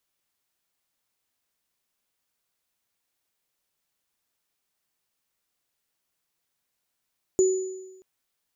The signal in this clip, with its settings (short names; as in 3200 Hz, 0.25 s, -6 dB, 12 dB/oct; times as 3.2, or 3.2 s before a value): sine partials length 0.63 s, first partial 376 Hz, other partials 6950 Hz, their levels -10.5 dB, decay 1.08 s, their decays 0.97 s, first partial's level -15 dB